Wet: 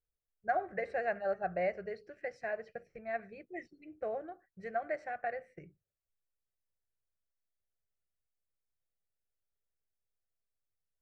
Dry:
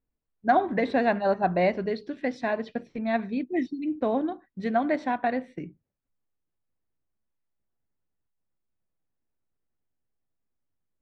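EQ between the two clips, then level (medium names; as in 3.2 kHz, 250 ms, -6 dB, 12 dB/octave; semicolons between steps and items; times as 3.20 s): dynamic bell 280 Hz, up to -4 dB, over -35 dBFS, Q 1.1; static phaser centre 970 Hz, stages 6; -7.5 dB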